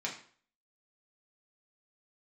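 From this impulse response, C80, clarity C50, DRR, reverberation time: 12.5 dB, 8.0 dB, -3.5 dB, 0.50 s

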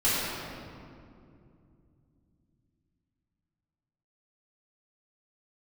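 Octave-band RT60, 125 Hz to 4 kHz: 4.6, 4.0, 2.8, 2.2, 1.8, 1.4 s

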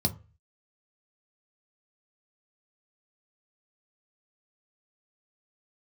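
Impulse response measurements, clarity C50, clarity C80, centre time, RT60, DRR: 17.5 dB, 23.5 dB, 6 ms, 0.35 s, 5.0 dB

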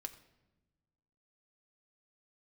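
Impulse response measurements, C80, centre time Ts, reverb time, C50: 15.5 dB, 7 ms, 1.1 s, 14.0 dB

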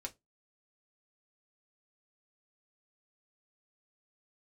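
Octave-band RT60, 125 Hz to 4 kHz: 0.25, 0.20, 0.20, 0.15, 0.15, 0.15 s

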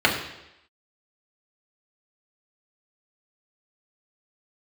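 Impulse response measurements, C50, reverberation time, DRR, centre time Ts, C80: 6.5 dB, 0.85 s, -3.0 dB, 30 ms, 8.5 dB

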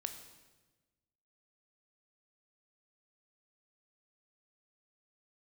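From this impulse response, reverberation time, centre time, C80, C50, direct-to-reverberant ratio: 1.2 s, 19 ms, 10.5 dB, 9.0 dB, 6.5 dB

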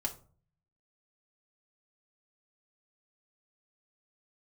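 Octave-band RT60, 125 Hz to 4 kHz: 0.90, 0.60, 0.45, 0.40, 0.25, 0.25 s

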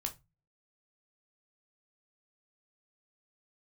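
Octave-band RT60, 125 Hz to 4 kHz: 0.50, 0.35, 0.25, 0.20, 0.20, 0.20 s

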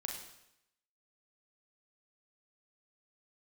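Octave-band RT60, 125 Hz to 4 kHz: 0.80, 0.80, 0.80, 0.80, 0.85, 0.80 s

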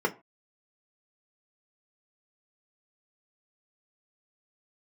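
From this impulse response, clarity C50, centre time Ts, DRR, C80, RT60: 19.5 dB, 8 ms, 2.0 dB, 25.0 dB, 0.30 s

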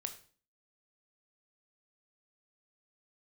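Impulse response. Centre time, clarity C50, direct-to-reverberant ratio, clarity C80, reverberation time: 9 ms, 11.5 dB, 6.5 dB, 16.0 dB, 0.40 s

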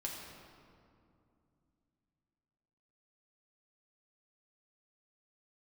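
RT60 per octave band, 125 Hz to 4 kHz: 3.7, 3.6, 2.6, 2.4, 1.7, 1.4 s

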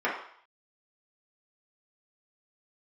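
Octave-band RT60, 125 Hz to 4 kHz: 0.35, 0.45, 0.55, 0.65, 0.60, 0.65 s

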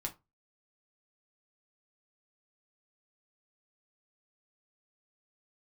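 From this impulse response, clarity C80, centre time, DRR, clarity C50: 25.5 dB, 9 ms, 1.5 dB, 16.5 dB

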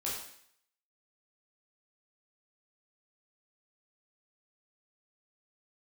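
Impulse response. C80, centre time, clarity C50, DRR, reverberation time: 5.5 dB, 50 ms, 2.5 dB, -6.0 dB, 0.65 s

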